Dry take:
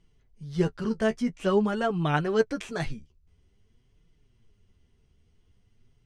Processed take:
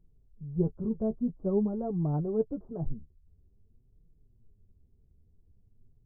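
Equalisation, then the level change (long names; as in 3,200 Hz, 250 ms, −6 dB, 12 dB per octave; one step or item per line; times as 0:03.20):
Gaussian smoothing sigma 13 samples
low-shelf EQ 130 Hz +5.5 dB
−3.0 dB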